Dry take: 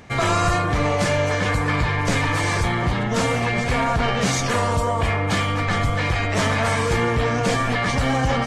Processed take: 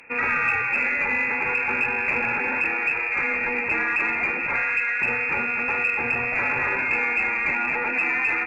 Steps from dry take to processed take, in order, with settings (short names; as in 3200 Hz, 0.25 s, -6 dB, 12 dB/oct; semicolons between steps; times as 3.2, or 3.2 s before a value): inverted band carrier 2600 Hz; added harmonics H 2 -39 dB, 4 -37 dB, 5 -37 dB, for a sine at -6 dBFS; gain -4 dB